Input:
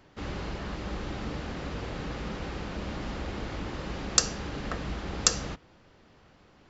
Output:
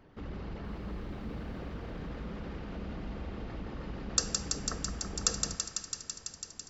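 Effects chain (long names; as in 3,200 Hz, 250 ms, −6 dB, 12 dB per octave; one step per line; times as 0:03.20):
spectral envelope exaggerated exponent 1.5
in parallel at 0 dB: downward compressor, threshold −49 dBFS, peak gain reduction 30 dB
0:00.63–0:01.58: on the sum: background noise pink −70 dBFS
feedback echo with a high-pass in the loop 166 ms, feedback 84%, high-pass 800 Hz, level −4.5 dB
on a send at −11.5 dB: convolution reverb RT60 1.6 s, pre-delay 4 ms
on the sum: level −6.5 dB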